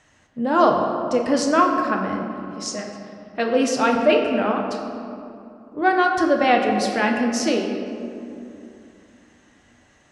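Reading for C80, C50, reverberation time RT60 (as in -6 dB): 5.0 dB, 4.0 dB, 2.6 s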